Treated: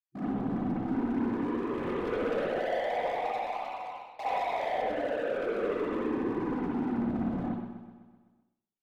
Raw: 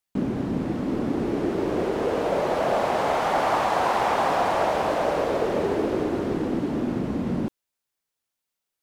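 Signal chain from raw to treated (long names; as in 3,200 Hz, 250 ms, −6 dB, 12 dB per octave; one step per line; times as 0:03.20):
0:01.73–0:02.43: low-shelf EQ 240 Hz +11 dB
0:04.82–0:05.69: inverse Chebyshev low-pass filter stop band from 1,300 Hz, stop band 40 dB
spectral peaks only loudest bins 8
gain into a clipping stage and back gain 32 dB
repeating echo 127 ms, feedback 58%, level −11 dB
0:02.96–0:04.19: fade out
convolution reverb RT60 0.75 s, pre-delay 55 ms, DRR −6.5 dB
level −5.5 dB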